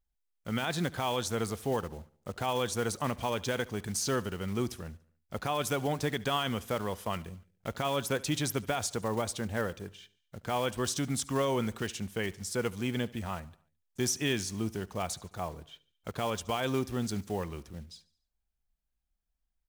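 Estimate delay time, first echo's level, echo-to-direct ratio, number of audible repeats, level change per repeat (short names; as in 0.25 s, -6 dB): 72 ms, -21.5 dB, -20.0 dB, 3, -6.0 dB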